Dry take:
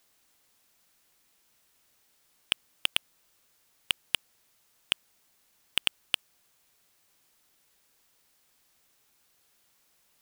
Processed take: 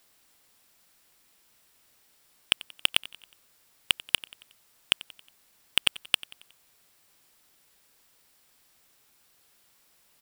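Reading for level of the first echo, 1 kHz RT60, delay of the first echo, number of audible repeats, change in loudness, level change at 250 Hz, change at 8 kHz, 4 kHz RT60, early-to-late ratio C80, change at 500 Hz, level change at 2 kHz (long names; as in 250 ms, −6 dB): −20.0 dB, no reverb audible, 91 ms, 3, +4.0 dB, +4.0 dB, +4.0 dB, no reverb audible, no reverb audible, +4.0 dB, +4.0 dB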